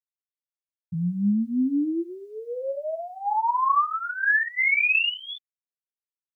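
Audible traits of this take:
phaser sweep stages 8, 0.79 Hz, lowest notch 430–1,100 Hz
a quantiser's noise floor 12 bits, dither none
a shimmering, thickened sound

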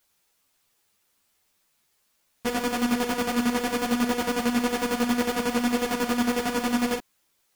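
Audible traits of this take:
aliases and images of a low sample rate 3,900 Hz, jitter 0%
chopped level 11 Hz, depth 60%, duty 35%
a quantiser's noise floor 12 bits, dither triangular
a shimmering, thickened sound

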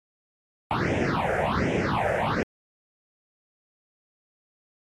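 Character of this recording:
a quantiser's noise floor 12 bits, dither none
phaser sweep stages 6, 1.3 Hz, lowest notch 270–1,200 Hz
MP2

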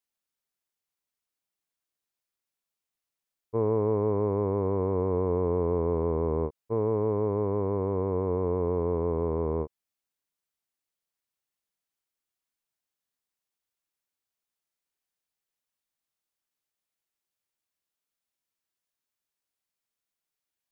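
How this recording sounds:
background noise floor −89 dBFS
spectral slope −4.0 dB per octave

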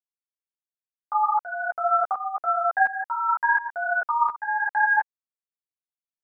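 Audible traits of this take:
a quantiser's noise floor 12 bits, dither none
tremolo saw up 1.4 Hz, depth 85%
a shimmering, thickened sound

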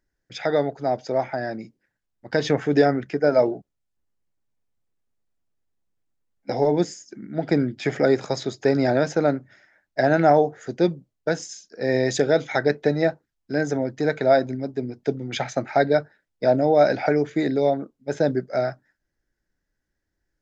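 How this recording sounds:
background noise floor −80 dBFS
spectral slope −5.5 dB per octave

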